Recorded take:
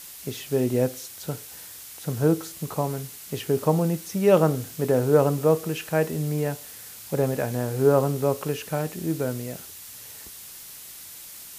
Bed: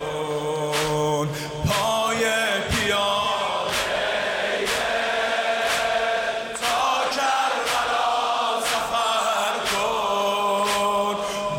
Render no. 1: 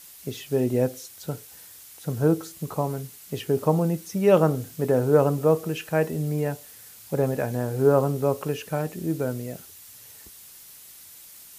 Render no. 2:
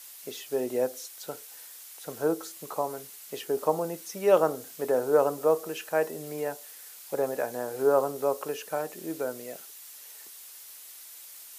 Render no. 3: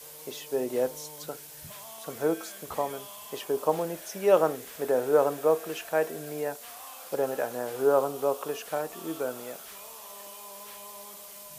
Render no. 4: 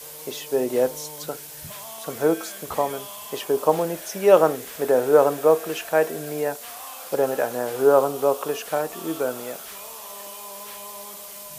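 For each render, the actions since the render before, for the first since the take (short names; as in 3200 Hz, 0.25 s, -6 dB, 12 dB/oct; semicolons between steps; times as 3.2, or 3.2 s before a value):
denoiser 6 dB, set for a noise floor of -42 dBFS
HPF 470 Hz 12 dB/oct; dynamic EQ 2500 Hz, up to -5 dB, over -46 dBFS, Q 1.3
add bed -26 dB
gain +6.5 dB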